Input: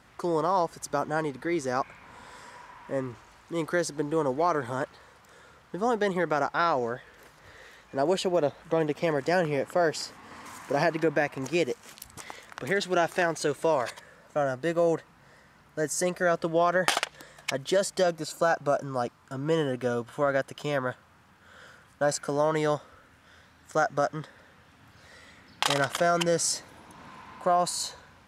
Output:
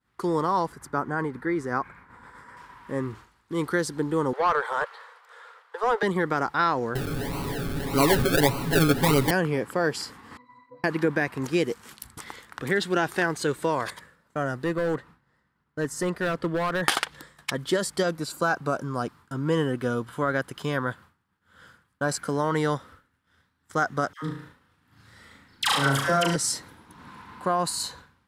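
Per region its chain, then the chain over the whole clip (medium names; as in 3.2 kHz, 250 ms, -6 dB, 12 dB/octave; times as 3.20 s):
0.72–2.57 s: resonant high shelf 2.4 kHz -7.5 dB, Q 1.5 + tremolo 7.8 Hz, depth 30%
4.33–6.03 s: steep high-pass 430 Hz 72 dB/octave + overdrive pedal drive 14 dB, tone 1.9 kHz, clips at -13.5 dBFS
6.95–9.31 s: jump at every zero crossing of -29.5 dBFS + decimation with a swept rate 36×, swing 60% 1.7 Hz + comb 7.2 ms, depth 72%
10.37–10.84 s: compression 4:1, threshold -40 dBFS + overdrive pedal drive 16 dB, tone 5.5 kHz, clips at -24.5 dBFS + pitch-class resonator B, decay 0.21 s
14.64–16.83 s: treble shelf 5.1 kHz -9 dB + hard clipper -22 dBFS
24.13–26.36 s: phase dispersion lows, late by 95 ms, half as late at 1 kHz + flutter echo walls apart 6.2 m, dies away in 0.5 s
whole clip: expander -45 dBFS; fifteen-band graphic EQ 630 Hz -11 dB, 2.5 kHz -5 dB, 6.3 kHz -7 dB; trim +5 dB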